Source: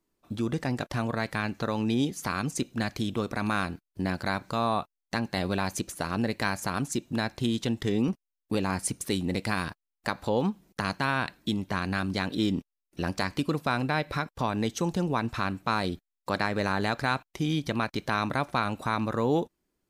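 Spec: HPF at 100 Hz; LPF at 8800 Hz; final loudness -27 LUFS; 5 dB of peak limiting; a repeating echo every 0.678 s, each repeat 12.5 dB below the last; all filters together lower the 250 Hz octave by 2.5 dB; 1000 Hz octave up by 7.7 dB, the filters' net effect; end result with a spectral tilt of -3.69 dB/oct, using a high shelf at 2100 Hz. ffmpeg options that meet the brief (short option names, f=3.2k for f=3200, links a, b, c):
-af "highpass=100,lowpass=8.8k,equalizer=f=250:t=o:g=-3.5,equalizer=f=1k:t=o:g=8,highshelf=f=2.1k:g=7.5,alimiter=limit=-9.5dB:level=0:latency=1,aecho=1:1:678|1356|2034:0.237|0.0569|0.0137"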